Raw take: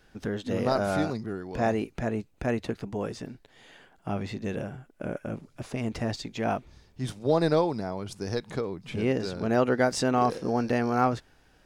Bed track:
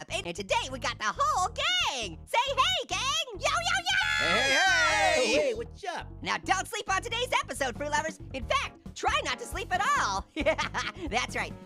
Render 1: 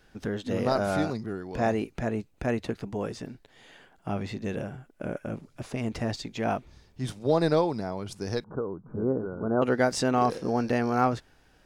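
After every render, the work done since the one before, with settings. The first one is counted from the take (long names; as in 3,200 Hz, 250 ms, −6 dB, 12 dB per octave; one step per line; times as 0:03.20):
0:08.44–0:09.62: Chebyshev low-pass with heavy ripple 1,500 Hz, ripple 3 dB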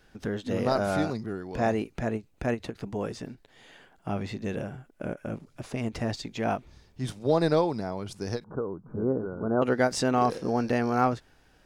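every ending faded ahead of time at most 360 dB per second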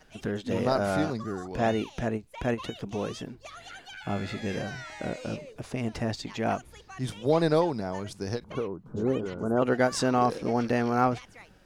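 mix in bed track −18 dB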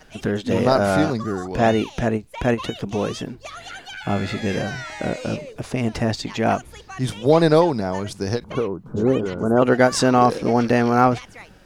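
level +8.5 dB
brickwall limiter −2 dBFS, peak gain reduction 0.5 dB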